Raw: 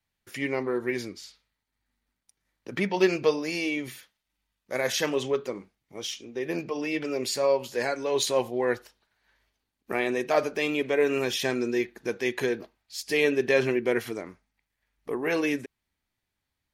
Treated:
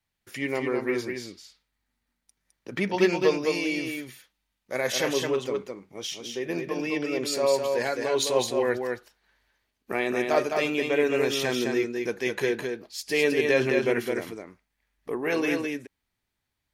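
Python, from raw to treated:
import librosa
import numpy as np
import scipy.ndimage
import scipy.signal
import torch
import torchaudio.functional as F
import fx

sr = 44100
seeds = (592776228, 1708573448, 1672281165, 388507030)

y = x + 10.0 ** (-4.5 / 20.0) * np.pad(x, (int(210 * sr / 1000.0), 0))[:len(x)]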